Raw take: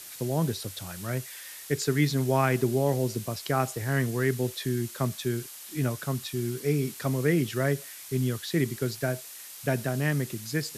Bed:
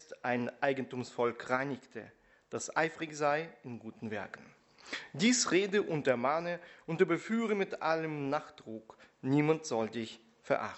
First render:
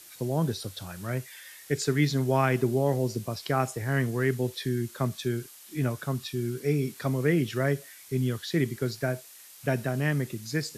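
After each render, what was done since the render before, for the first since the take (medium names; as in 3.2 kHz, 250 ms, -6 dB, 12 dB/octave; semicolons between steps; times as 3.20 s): noise print and reduce 6 dB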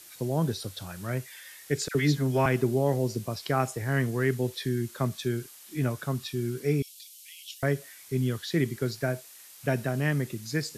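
1.88–2.46 s: phase dispersion lows, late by 71 ms, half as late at 1.4 kHz; 6.82–7.63 s: steep high-pass 2.8 kHz 48 dB/octave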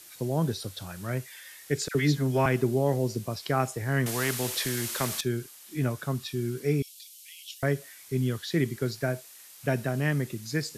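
4.06–5.21 s: spectrum-flattening compressor 2:1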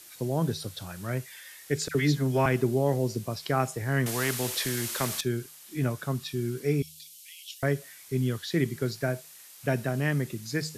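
de-hum 78.01 Hz, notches 2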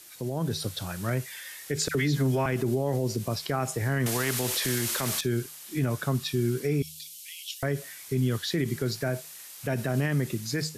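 peak limiter -23 dBFS, peak gain reduction 10 dB; level rider gain up to 5 dB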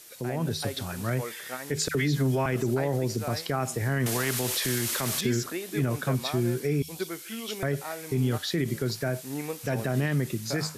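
add bed -6 dB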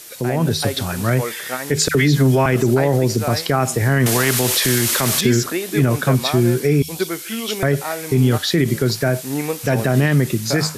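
trim +11 dB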